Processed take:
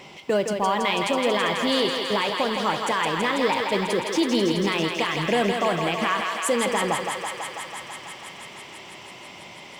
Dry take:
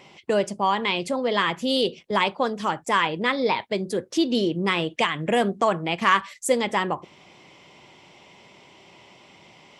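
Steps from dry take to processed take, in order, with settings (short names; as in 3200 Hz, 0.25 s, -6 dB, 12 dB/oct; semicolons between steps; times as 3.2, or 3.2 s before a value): G.711 law mismatch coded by mu; limiter -13.5 dBFS, peak gain reduction 8 dB; thinning echo 0.164 s, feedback 85%, high-pass 380 Hz, level -4.5 dB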